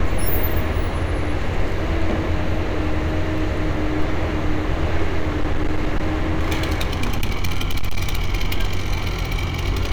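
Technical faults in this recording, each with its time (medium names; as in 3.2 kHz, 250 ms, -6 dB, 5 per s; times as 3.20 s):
5.19–8.29 s: clipped -14 dBFS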